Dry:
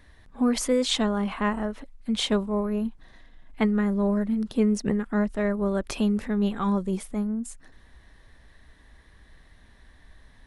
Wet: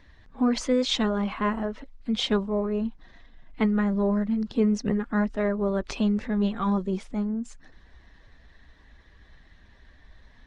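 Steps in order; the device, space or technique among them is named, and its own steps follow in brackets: clip after many re-uploads (low-pass 6.3 kHz 24 dB/octave; coarse spectral quantiser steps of 15 dB)

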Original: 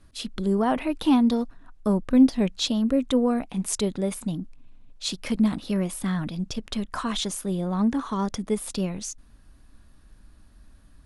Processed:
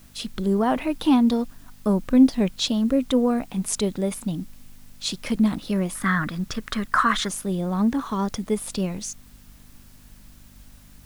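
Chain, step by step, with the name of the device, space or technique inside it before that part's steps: 5.95–7.29 s: high-order bell 1.5 kHz +13.5 dB 1.1 oct; video cassette with head-switching buzz (mains buzz 50 Hz, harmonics 5, -56 dBFS -1 dB/octave; white noise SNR 32 dB); trim +1.5 dB

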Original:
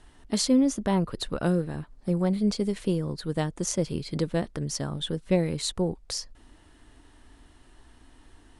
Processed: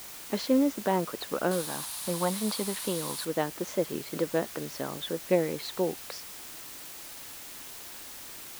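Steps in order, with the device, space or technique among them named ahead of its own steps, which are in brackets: wax cylinder (band-pass 330–2500 Hz; wow and flutter; white noise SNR 12 dB); 1.51–3.25 s: fifteen-band graphic EQ 400 Hz -6 dB, 1 kHz +8 dB, 4 kHz +9 dB, 10 kHz +12 dB; trim +2 dB

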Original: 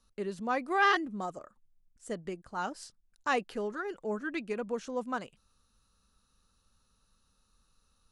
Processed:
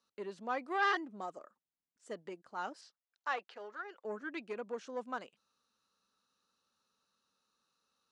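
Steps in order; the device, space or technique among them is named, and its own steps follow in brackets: public-address speaker with an overloaded transformer (transformer saturation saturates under 1.1 kHz; band-pass 290–6200 Hz); 2.81–4.05 s: three-band isolator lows -15 dB, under 520 Hz, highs -15 dB, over 6.1 kHz; trim -4.5 dB

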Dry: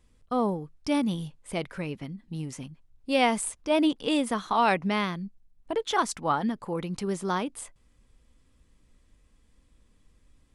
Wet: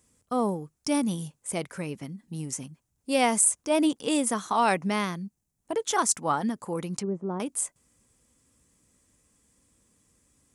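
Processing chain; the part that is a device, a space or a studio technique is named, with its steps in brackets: 6.95–7.40 s: low-pass that closes with the level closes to 590 Hz, closed at -28 dBFS; budget condenser microphone (high-pass 100 Hz 12 dB/octave; resonant high shelf 5.2 kHz +9.5 dB, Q 1.5)

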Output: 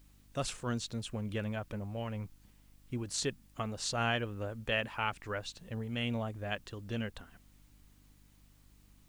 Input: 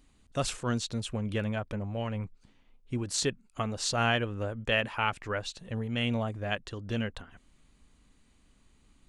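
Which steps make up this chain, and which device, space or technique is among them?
video cassette with head-switching buzz (mains buzz 50 Hz, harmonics 6, -58 dBFS -6 dB/octave; white noise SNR 33 dB); trim -5 dB

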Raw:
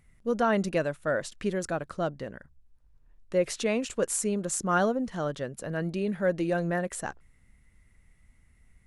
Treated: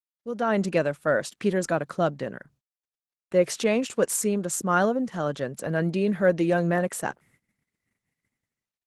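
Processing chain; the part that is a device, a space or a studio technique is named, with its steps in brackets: 3.39–4.09 s: gate -46 dBFS, range -29 dB; video call (high-pass 120 Hz 24 dB/octave; level rider gain up to 13.5 dB; gate -52 dBFS, range -35 dB; trim -6.5 dB; Opus 16 kbps 48 kHz)

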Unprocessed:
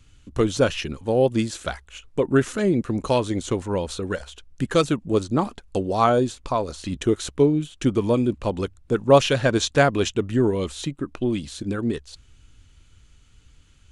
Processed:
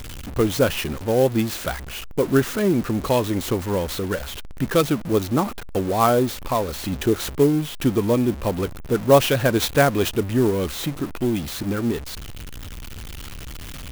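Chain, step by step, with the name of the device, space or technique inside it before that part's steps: early CD player with a faulty converter (jump at every zero crossing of -29 dBFS; sampling jitter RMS 0.031 ms)

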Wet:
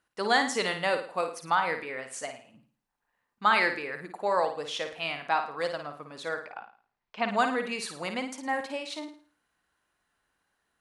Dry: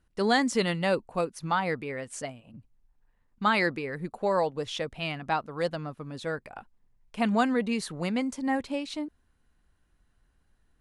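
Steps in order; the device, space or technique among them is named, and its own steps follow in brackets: 6.38–7.29 s: low-pass 5.2 kHz 24 dB/octave; filter by subtraction (in parallel: low-pass 1 kHz 12 dB/octave + polarity flip); on the sum: flutter echo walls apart 9.3 m, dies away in 0.43 s

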